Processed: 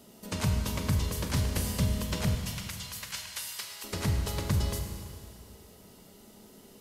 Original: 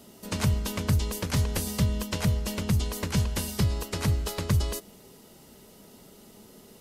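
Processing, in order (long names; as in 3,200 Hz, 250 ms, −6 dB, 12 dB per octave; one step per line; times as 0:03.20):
0:02.35–0:03.84: high-pass filter 1,400 Hz 12 dB per octave
four-comb reverb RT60 2.2 s, combs from 33 ms, DRR 4 dB
level −3.5 dB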